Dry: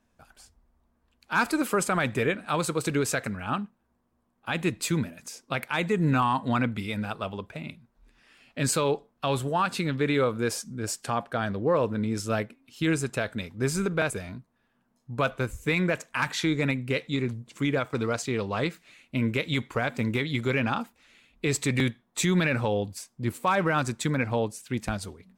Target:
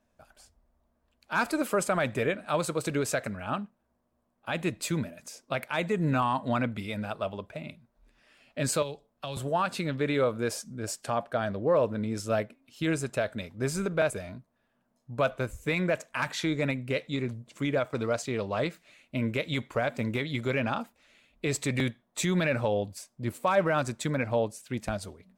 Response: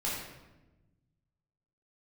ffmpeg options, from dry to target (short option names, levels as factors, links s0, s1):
-filter_complex "[0:a]asettb=1/sr,asplit=3[s0][s1][s2];[s0]atrim=end=8.824[s3];[s1]atrim=start=8.82:end=9.37,asetpts=PTS-STARTPTS,afade=t=in:d=0.004:c=qsin,afade=t=out:st=0.546:d=0.004:c=qsin,acrossover=split=130|3000[s4][s5][s6];[s5]acompressor=threshold=0.0158:ratio=6[s7];[s4][s7][s6]amix=inputs=3:normalize=0[s8];[s2]atrim=start=9.366[s9];[s3][s8]acrossfade=d=0.004:c1=hsin:c2=qsin[s10];[s10][s9]acrossfade=d=0.004:c1=qsin:c2=hsin,equalizer=f=610:w=4.1:g=9,volume=0.668"